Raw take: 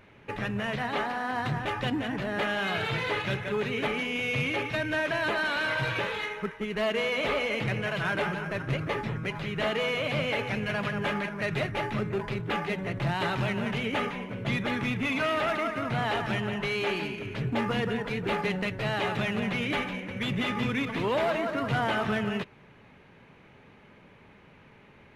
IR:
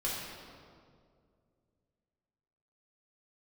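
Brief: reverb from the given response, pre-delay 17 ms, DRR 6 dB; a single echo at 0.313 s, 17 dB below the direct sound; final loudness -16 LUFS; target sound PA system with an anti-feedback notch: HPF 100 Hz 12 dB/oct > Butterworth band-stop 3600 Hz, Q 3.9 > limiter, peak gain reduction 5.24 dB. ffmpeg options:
-filter_complex "[0:a]aecho=1:1:313:0.141,asplit=2[a][b];[1:a]atrim=start_sample=2205,adelay=17[c];[b][c]afir=irnorm=-1:irlink=0,volume=-11.5dB[d];[a][d]amix=inputs=2:normalize=0,highpass=100,asuperstop=centerf=3600:order=8:qfactor=3.9,volume=14dB,alimiter=limit=-6.5dB:level=0:latency=1"

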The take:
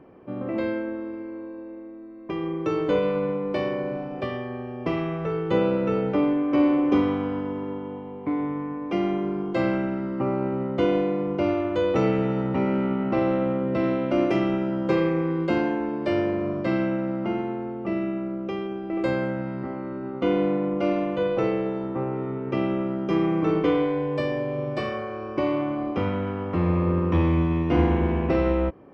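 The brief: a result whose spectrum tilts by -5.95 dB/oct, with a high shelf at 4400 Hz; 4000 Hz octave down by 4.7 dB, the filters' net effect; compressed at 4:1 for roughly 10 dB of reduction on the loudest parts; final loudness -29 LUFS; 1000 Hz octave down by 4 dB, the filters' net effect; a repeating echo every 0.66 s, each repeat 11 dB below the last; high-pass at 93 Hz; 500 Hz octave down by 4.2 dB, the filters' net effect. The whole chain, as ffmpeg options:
-af "highpass=93,equalizer=f=500:t=o:g=-4.5,equalizer=f=1k:t=o:g=-3.5,equalizer=f=4k:t=o:g=-8.5,highshelf=f=4.4k:g=3.5,acompressor=threshold=-30dB:ratio=4,aecho=1:1:660|1320|1980:0.282|0.0789|0.0221,volume=4.5dB"

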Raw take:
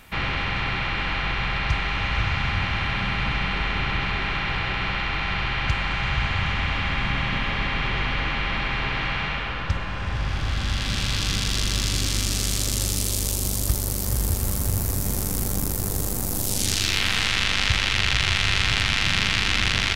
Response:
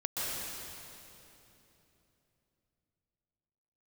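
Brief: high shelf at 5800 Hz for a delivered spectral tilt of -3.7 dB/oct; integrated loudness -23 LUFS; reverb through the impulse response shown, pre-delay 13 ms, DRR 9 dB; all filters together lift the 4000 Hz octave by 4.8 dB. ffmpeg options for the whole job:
-filter_complex "[0:a]equalizer=f=4k:t=o:g=9,highshelf=f=5.8k:g=-8,asplit=2[a][b];[1:a]atrim=start_sample=2205,adelay=13[c];[b][c]afir=irnorm=-1:irlink=0,volume=-15.5dB[d];[a][d]amix=inputs=2:normalize=0,volume=-1.5dB"

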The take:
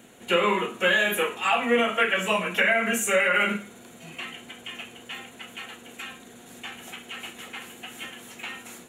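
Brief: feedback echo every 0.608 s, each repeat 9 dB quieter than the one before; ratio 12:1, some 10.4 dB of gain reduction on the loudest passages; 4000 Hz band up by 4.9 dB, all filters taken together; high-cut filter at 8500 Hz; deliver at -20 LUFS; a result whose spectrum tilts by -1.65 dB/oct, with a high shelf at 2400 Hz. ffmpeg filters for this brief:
-af "lowpass=8.5k,highshelf=f=2.4k:g=3.5,equalizer=f=4k:t=o:g=4.5,acompressor=threshold=-26dB:ratio=12,aecho=1:1:608|1216|1824|2432:0.355|0.124|0.0435|0.0152,volume=11dB"

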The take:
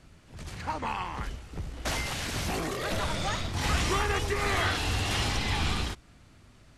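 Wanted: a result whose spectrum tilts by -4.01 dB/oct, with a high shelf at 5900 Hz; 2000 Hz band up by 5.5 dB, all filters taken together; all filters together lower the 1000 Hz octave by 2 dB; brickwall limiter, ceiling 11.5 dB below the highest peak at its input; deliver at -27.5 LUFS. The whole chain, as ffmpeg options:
-af "equalizer=f=1k:t=o:g=-5,equalizer=f=2k:t=o:g=9,highshelf=f=5.9k:g=-8.5,volume=7dB,alimiter=limit=-18.5dB:level=0:latency=1"

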